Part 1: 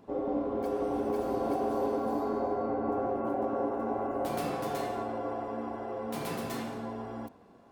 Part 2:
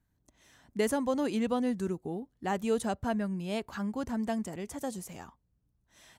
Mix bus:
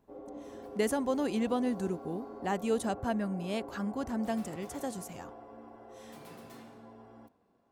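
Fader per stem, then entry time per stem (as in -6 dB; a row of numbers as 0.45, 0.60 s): -14.0, -1.0 dB; 0.00, 0.00 s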